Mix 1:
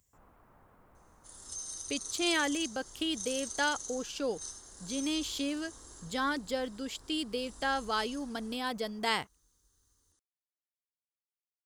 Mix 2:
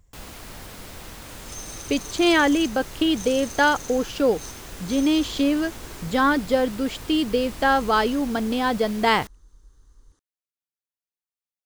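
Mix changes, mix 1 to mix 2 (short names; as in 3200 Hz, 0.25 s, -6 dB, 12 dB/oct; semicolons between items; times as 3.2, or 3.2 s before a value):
speech: remove HPF 74 Hz; first sound: remove ladder low-pass 1400 Hz, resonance 35%; master: remove pre-emphasis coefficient 0.8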